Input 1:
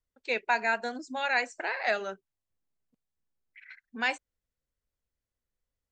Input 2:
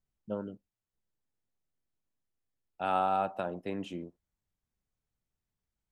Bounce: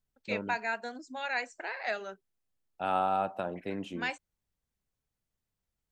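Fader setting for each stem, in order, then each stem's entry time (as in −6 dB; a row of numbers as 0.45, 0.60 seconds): −5.5, 0.0 decibels; 0.00, 0.00 seconds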